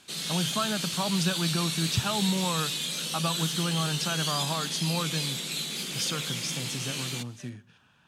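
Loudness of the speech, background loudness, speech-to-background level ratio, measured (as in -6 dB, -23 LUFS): -31.5 LUFS, -30.0 LUFS, -1.5 dB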